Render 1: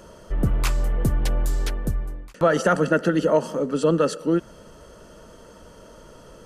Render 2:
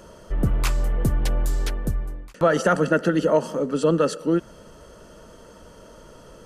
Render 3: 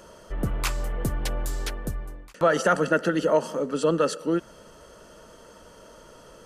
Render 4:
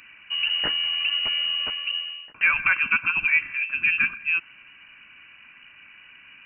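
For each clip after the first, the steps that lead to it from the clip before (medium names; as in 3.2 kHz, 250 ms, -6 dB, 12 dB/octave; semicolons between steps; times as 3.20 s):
no audible change
bass shelf 350 Hz -7 dB
frequency inversion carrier 2.9 kHz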